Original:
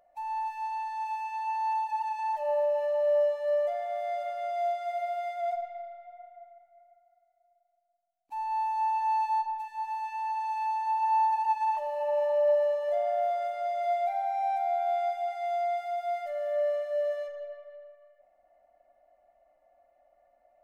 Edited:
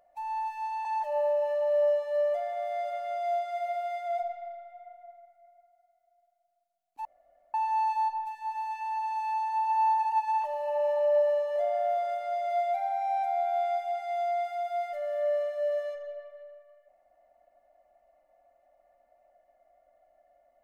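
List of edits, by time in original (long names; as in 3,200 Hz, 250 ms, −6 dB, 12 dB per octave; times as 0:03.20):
0:00.85–0:02.18: remove
0:08.38–0:08.87: fill with room tone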